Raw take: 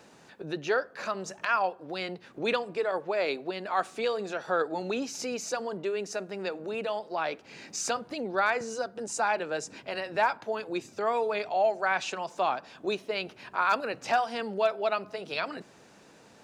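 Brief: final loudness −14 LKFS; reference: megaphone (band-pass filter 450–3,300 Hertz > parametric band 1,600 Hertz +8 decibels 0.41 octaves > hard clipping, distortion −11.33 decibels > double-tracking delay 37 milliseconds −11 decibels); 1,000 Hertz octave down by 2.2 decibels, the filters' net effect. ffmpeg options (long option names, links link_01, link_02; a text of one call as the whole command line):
ffmpeg -i in.wav -filter_complex "[0:a]highpass=450,lowpass=3300,equalizer=frequency=1000:width_type=o:gain=-4.5,equalizer=frequency=1600:width_type=o:width=0.41:gain=8,asoftclip=type=hard:threshold=-24dB,asplit=2[link_01][link_02];[link_02]adelay=37,volume=-11dB[link_03];[link_01][link_03]amix=inputs=2:normalize=0,volume=19dB" out.wav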